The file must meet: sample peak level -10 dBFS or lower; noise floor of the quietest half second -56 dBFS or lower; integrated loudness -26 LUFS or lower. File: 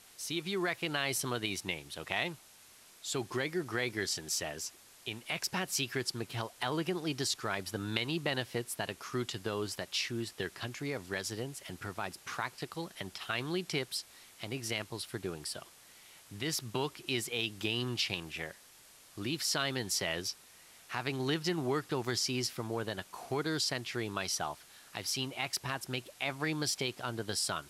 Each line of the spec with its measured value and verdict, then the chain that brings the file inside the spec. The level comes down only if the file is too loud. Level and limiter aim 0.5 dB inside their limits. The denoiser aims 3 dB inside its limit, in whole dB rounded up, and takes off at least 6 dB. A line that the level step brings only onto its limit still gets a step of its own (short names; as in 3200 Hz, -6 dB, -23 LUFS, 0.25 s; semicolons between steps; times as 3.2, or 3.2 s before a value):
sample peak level -12.5 dBFS: OK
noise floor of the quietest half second -58 dBFS: OK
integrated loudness -35.5 LUFS: OK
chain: none